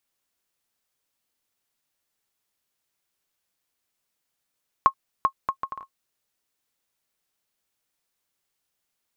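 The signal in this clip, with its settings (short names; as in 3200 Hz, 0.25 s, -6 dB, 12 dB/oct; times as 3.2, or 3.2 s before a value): bouncing ball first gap 0.39 s, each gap 0.61, 1080 Hz, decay 78 ms -5.5 dBFS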